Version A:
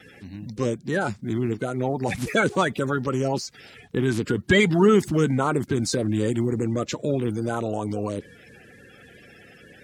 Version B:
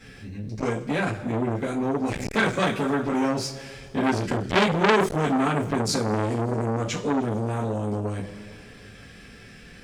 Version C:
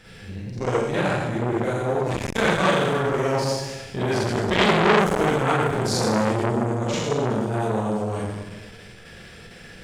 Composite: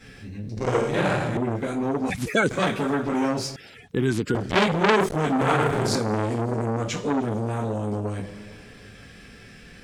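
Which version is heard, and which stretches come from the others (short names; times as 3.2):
B
0.57–1.37 from C
2.1–2.51 from A
3.56–4.35 from A
5.41–5.95 from C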